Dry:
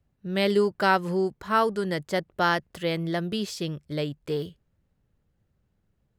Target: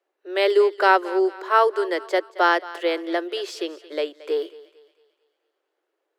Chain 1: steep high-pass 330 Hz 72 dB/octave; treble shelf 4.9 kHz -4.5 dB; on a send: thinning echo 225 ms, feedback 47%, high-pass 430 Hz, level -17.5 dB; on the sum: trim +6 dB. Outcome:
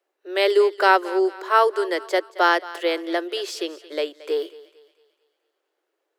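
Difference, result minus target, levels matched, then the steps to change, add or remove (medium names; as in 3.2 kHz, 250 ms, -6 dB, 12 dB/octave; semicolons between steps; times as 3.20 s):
8 kHz band +4.5 dB
change: treble shelf 4.9 kHz -11.5 dB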